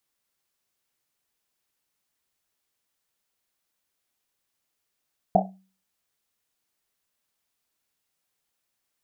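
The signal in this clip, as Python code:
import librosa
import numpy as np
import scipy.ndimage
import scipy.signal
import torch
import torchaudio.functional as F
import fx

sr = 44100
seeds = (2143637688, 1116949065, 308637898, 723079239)

y = fx.risset_drum(sr, seeds[0], length_s=1.1, hz=190.0, decay_s=0.41, noise_hz=700.0, noise_width_hz=200.0, noise_pct=60)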